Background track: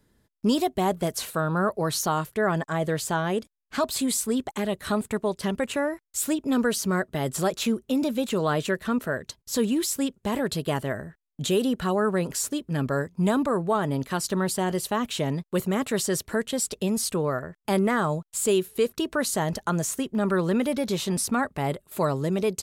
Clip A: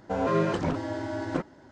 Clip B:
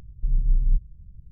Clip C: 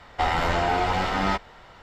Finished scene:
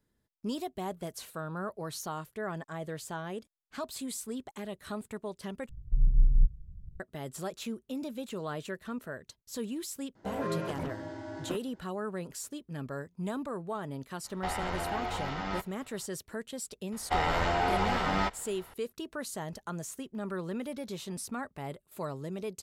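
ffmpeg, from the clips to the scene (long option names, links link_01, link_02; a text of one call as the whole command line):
ffmpeg -i bed.wav -i cue0.wav -i cue1.wav -i cue2.wav -filter_complex "[3:a]asplit=2[link_01][link_02];[0:a]volume=-12.5dB[link_03];[link_01]aresample=16000,aresample=44100[link_04];[link_03]asplit=2[link_05][link_06];[link_05]atrim=end=5.694[link_07];[2:a]atrim=end=1.31,asetpts=PTS-STARTPTS,volume=-2dB[link_08];[link_06]atrim=start=6.996[link_09];[1:a]atrim=end=1.71,asetpts=PTS-STARTPTS,volume=-9dB,afade=type=in:duration=0.004:curve=hsin,afade=type=out:start_time=1.706:duration=0.004:curve=hsin,adelay=10150[link_10];[link_04]atrim=end=1.82,asetpts=PTS-STARTPTS,volume=-11.5dB,afade=type=in:duration=0.004:curve=hsin,afade=type=out:start_time=1.816:duration=0.004:curve=hsin,adelay=14240[link_11];[link_02]atrim=end=1.82,asetpts=PTS-STARTPTS,volume=-5dB,afade=type=in:duration=0.004:curve=hsin,afade=type=out:start_time=1.816:duration=0.004:curve=hsin,adelay=16920[link_12];[link_07][link_08]acrossfade=duration=0.004:curve1=hsin:curve2=hsin[link_13];[link_13][link_09]acrossfade=duration=0.004:curve1=hsin:curve2=hsin[link_14];[link_14][link_10][link_11][link_12]amix=inputs=4:normalize=0" out.wav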